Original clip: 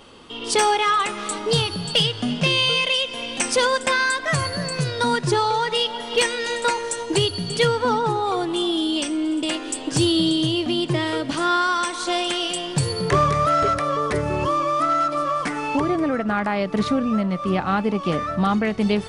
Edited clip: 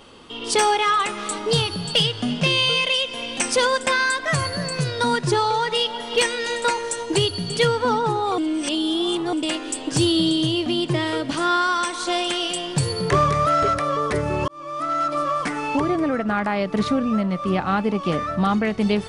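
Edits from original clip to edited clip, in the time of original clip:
8.38–9.33 s: reverse
14.48–15.14 s: fade in

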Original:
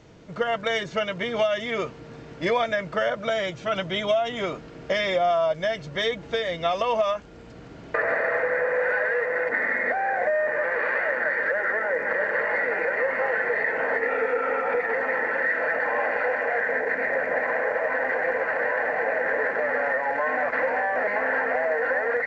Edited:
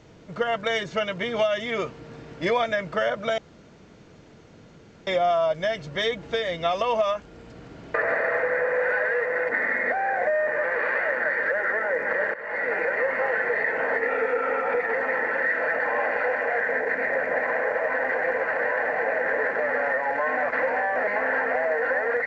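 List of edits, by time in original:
3.38–5.07 s: room tone
12.34–12.71 s: fade in, from -19 dB

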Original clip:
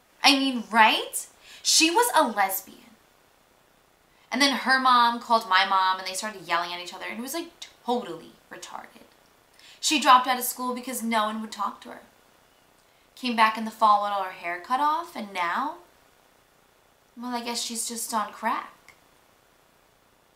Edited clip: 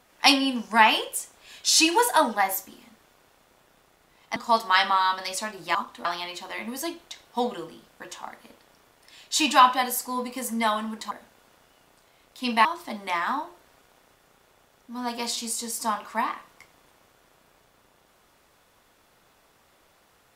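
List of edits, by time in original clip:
4.36–5.17 s: delete
11.62–11.92 s: move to 6.56 s
13.46–14.93 s: delete

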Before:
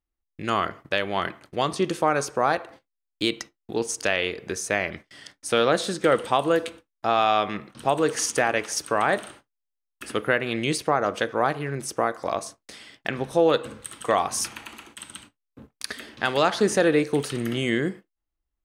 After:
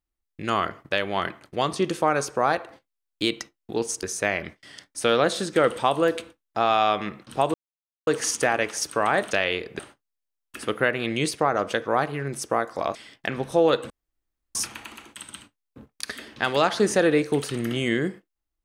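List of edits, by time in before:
4.03–4.51 s: move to 9.26 s
8.02 s: insert silence 0.53 s
12.42–12.76 s: delete
13.71–14.36 s: room tone

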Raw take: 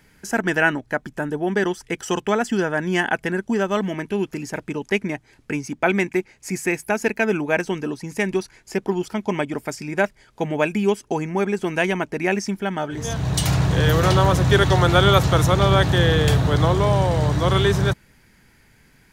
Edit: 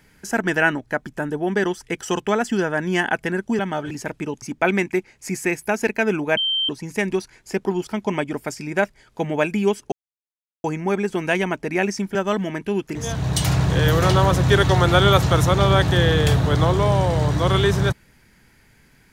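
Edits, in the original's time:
3.59–4.39 s: swap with 12.64–12.96 s
4.90–5.63 s: delete
7.58–7.90 s: bleep 3.13 kHz -18.5 dBFS
11.13 s: insert silence 0.72 s

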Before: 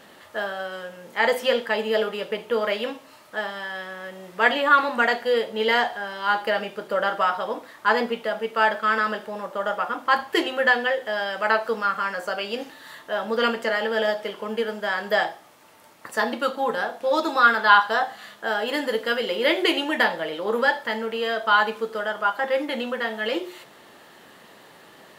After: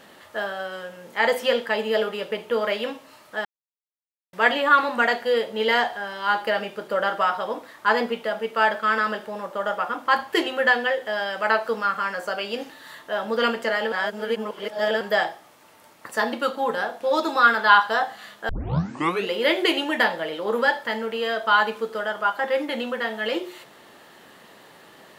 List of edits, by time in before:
3.45–4.33 s: mute
13.92–15.01 s: reverse
18.49 s: tape start 0.83 s

